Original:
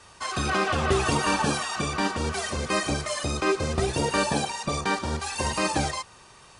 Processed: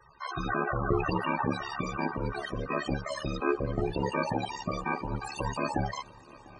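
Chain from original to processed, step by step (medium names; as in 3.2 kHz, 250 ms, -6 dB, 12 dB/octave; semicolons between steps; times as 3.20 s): ring modulator 35 Hz; loudest bins only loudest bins 32; shuffle delay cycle 930 ms, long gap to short 3:1, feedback 51%, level -22.5 dB; trim -1 dB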